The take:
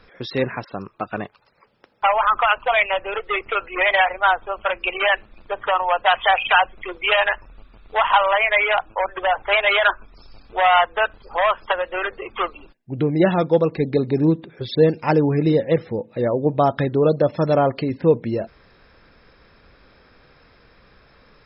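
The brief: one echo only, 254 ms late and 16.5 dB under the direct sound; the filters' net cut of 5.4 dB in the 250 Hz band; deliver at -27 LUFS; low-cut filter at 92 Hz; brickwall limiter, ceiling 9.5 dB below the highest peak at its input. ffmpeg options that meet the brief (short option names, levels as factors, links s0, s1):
-af "highpass=92,equalizer=f=250:t=o:g=-8,alimiter=limit=0.237:level=0:latency=1,aecho=1:1:254:0.15,volume=0.668"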